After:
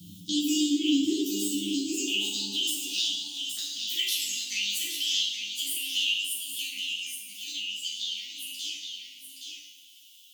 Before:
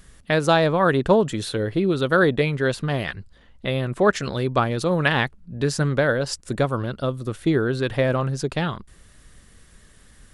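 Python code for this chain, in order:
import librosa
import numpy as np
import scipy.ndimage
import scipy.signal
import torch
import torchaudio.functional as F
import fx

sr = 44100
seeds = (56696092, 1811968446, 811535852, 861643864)

y = fx.pitch_heads(x, sr, semitones=11.0)
y = fx.doppler_pass(y, sr, speed_mps=7, closest_m=2.3, pass_at_s=3.55)
y = scipy.signal.sosfilt(scipy.signal.cheby1(5, 1.0, [330.0, 2900.0], 'bandstop', fs=sr, output='sos'), y)
y = fx.over_compress(y, sr, threshold_db=-41.0, ratio=-1.0)
y = fx.filter_sweep_highpass(y, sr, from_hz=160.0, to_hz=1800.0, start_s=0.18, end_s=3.17, q=4.4)
y = y + 10.0 ** (-8.5 / 20.0) * np.pad(y, (int(820 * sr / 1000.0), 0))[:len(y)]
y = fx.rev_double_slope(y, sr, seeds[0], early_s=0.72, late_s=2.4, knee_db=-18, drr_db=-7.0)
y = fx.band_squash(y, sr, depth_pct=40)
y = y * librosa.db_to_amplitude(7.5)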